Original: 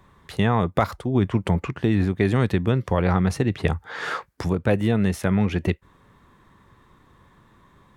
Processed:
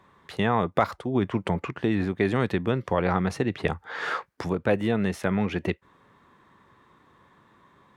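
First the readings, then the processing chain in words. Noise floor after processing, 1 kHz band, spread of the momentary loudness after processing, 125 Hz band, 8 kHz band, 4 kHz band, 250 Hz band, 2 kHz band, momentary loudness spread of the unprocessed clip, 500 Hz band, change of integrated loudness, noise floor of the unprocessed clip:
-62 dBFS, -0.5 dB, 7 LU, -7.5 dB, -6.0 dB, -2.5 dB, -4.0 dB, -1.0 dB, 8 LU, -1.5 dB, -3.5 dB, -57 dBFS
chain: HPF 270 Hz 6 dB/oct; high shelf 6000 Hz -9.5 dB

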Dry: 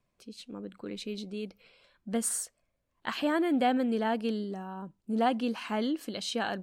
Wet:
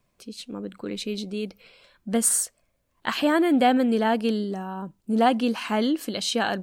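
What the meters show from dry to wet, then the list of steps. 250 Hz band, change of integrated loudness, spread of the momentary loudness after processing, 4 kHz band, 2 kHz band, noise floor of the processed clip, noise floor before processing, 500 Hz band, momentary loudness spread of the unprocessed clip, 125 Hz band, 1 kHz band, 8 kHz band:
+7.0 dB, +7.5 dB, 16 LU, +8.0 dB, +7.5 dB, -72 dBFS, -79 dBFS, +7.0 dB, 16 LU, n/a, +7.0 dB, +10.0 dB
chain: high shelf 7200 Hz +5 dB; gain +7 dB

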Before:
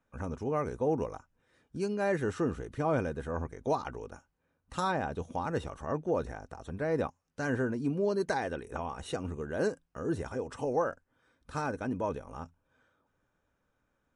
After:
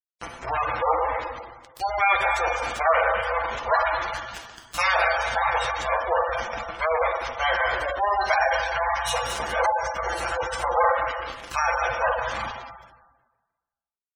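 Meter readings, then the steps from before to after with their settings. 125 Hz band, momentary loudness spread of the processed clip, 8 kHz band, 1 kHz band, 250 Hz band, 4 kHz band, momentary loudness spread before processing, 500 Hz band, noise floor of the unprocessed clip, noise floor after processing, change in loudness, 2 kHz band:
-4.5 dB, 11 LU, +12.5 dB, +15.0 dB, -13.5 dB, +17.0 dB, 11 LU, +6.0 dB, -79 dBFS, under -85 dBFS, +9.5 dB, +16.5 dB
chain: minimum comb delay 5.9 ms; inverse Chebyshev high-pass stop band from 290 Hz, stop band 40 dB; high shelf 2400 Hz +7 dB; on a send: thin delay 0.209 s, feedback 63%, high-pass 1500 Hz, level -6.5 dB; on the sum: AGC gain up to 8 dB; hum 60 Hz, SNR 15 dB; in parallel at -4 dB: soft clip -18.5 dBFS, distortion -17 dB; on the sum: bit-crush 5-bit; plate-style reverb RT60 1.3 s, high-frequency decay 0.8×, DRR 0 dB; spectral gate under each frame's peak -15 dB strong

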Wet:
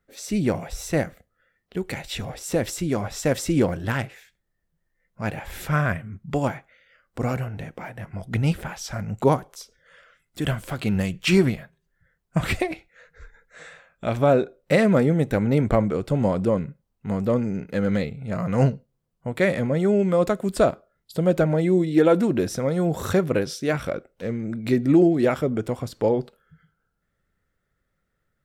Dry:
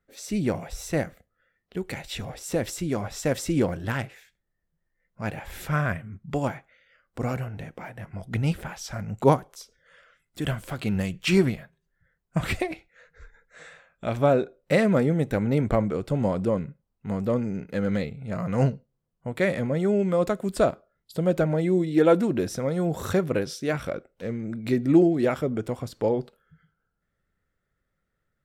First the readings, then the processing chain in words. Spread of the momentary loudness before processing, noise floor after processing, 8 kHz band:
14 LU, -76 dBFS, +3.0 dB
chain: maximiser +9.5 dB; gain -6.5 dB

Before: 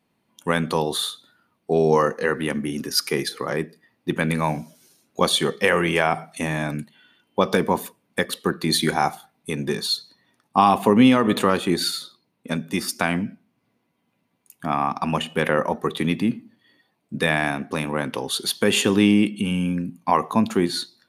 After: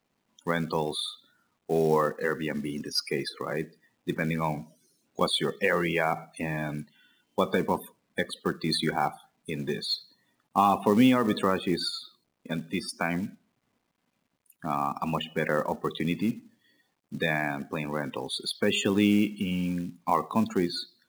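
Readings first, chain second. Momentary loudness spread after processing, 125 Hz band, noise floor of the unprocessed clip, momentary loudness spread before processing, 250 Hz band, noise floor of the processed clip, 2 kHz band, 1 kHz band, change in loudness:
12 LU, -6.0 dB, -72 dBFS, 12 LU, -6.0 dB, -77 dBFS, -6.5 dB, -6.0 dB, -6.0 dB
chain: loudest bins only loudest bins 64; companded quantiser 6-bit; gain -6 dB

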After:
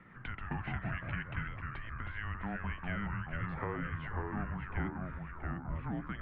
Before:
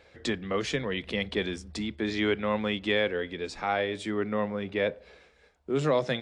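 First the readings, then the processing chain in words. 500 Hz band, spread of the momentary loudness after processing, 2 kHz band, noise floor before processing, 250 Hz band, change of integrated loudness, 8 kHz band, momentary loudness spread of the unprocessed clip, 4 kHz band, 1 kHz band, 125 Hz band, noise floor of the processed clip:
-19.5 dB, 5 LU, -7.5 dB, -61 dBFS, -9.5 dB, -10.0 dB, under -35 dB, 7 LU, -21.5 dB, -7.5 dB, 0.0 dB, -47 dBFS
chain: compressor 6:1, threshold -36 dBFS, peak gain reduction 14.5 dB; mistuned SSB -330 Hz 350–2600 Hz; echoes that change speed 0.101 s, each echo -2 st, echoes 3; bell 510 Hz -4 dB 1.1 oct; gain +2 dB

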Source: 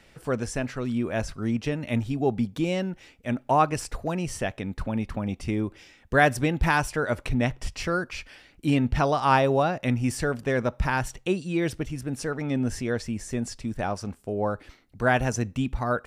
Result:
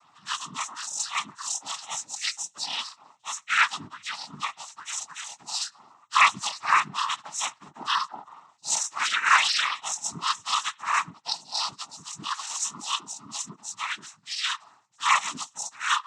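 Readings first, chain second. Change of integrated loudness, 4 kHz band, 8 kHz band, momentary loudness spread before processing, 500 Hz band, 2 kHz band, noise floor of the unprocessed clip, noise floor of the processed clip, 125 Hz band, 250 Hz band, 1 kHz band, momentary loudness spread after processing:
-0.5 dB, +11.5 dB, +10.0 dB, 9 LU, -25.5 dB, +2.5 dB, -57 dBFS, -62 dBFS, -24.5 dB, -23.0 dB, +1.0 dB, 14 LU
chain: spectrum mirrored in octaves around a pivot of 1300 Hz; noise vocoder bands 12; resonant low shelf 730 Hz -13.5 dB, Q 3; gain +1 dB

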